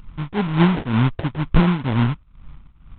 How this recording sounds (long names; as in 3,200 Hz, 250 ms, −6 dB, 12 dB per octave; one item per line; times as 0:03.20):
phaser sweep stages 8, 1.2 Hz, lowest notch 500–1,300 Hz
aliases and images of a low sample rate 1,200 Hz, jitter 20%
tremolo triangle 2.1 Hz, depth 90%
G.726